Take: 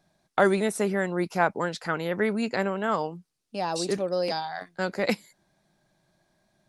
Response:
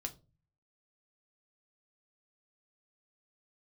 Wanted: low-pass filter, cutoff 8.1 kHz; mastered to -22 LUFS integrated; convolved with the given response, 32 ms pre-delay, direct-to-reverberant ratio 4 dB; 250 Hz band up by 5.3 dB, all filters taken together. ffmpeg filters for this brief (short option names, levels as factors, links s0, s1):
-filter_complex "[0:a]lowpass=8100,equalizer=f=250:t=o:g=7.5,asplit=2[s0][s1];[1:a]atrim=start_sample=2205,adelay=32[s2];[s1][s2]afir=irnorm=-1:irlink=0,volume=0.75[s3];[s0][s3]amix=inputs=2:normalize=0,volume=1.19"